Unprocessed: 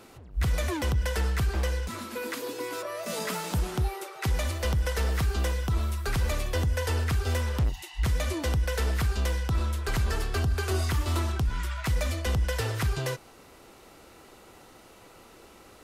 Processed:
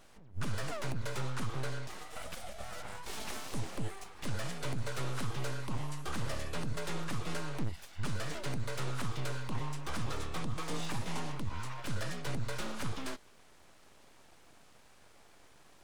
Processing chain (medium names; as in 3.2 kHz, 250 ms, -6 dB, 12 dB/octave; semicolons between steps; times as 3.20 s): formant shift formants -5 st; full-wave rectifier; trim -6 dB